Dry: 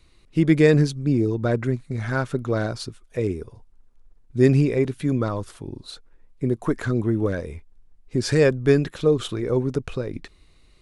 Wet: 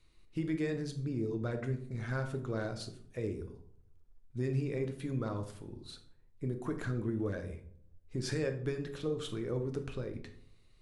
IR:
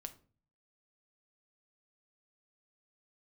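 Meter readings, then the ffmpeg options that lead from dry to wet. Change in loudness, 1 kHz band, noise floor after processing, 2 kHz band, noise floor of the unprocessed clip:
-15.0 dB, -13.0 dB, -62 dBFS, -14.0 dB, -55 dBFS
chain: -filter_complex "[0:a]acompressor=threshold=-19dB:ratio=6,bandreject=f=46.74:t=h:w=4,bandreject=f=93.48:t=h:w=4,bandreject=f=140.22:t=h:w=4,bandreject=f=186.96:t=h:w=4,bandreject=f=233.7:t=h:w=4,bandreject=f=280.44:t=h:w=4,bandreject=f=327.18:t=h:w=4,bandreject=f=373.92:t=h:w=4,bandreject=f=420.66:t=h:w=4,bandreject=f=467.4:t=h:w=4,bandreject=f=514.14:t=h:w=4,bandreject=f=560.88:t=h:w=4,bandreject=f=607.62:t=h:w=4,bandreject=f=654.36:t=h:w=4,bandreject=f=701.1:t=h:w=4,bandreject=f=747.84:t=h:w=4,bandreject=f=794.58:t=h:w=4,bandreject=f=841.32:t=h:w=4,bandreject=f=888.06:t=h:w=4,bandreject=f=934.8:t=h:w=4,bandreject=f=981.54:t=h:w=4,bandreject=f=1.02828k:t=h:w=4,bandreject=f=1.07502k:t=h:w=4,bandreject=f=1.12176k:t=h:w=4[a];[1:a]atrim=start_sample=2205,asetrate=28224,aresample=44100[b];[a][b]afir=irnorm=-1:irlink=0,volume=-8.5dB"

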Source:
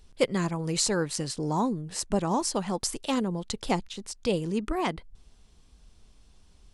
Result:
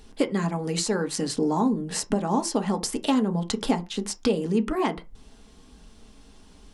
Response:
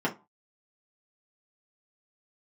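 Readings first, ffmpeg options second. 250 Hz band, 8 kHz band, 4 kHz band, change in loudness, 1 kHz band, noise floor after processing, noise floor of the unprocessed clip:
+5.0 dB, 0.0 dB, +1.0 dB, +3.0 dB, +2.0 dB, -52 dBFS, -58 dBFS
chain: -filter_complex "[0:a]acompressor=threshold=-34dB:ratio=5,asplit=2[a][b];[1:a]atrim=start_sample=2205,atrim=end_sample=6615[c];[b][c]afir=irnorm=-1:irlink=0,volume=-10.5dB[d];[a][d]amix=inputs=2:normalize=0,volume=6.5dB"

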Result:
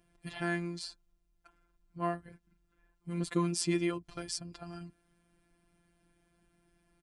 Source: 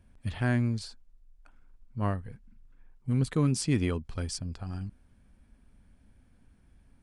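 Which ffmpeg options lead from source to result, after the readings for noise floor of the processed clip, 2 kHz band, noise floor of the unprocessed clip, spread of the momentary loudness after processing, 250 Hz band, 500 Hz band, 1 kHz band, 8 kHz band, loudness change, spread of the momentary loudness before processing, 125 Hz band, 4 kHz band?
-75 dBFS, -1.0 dB, -62 dBFS, 16 LU, -4.5 dB, -1.0 dB, +0.5 dB, -0.5 dB, -5.0 dB, 16 LU, -11.0 dB, 0.0 dB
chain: -af "afftfilt=real='hypot(re,im)*cos(PI*b)':imag='0':win_size=1024:overlap=0.75,highpass=f=89:p=1,aecho=1:1:2.9:0.45,volume=2dB"

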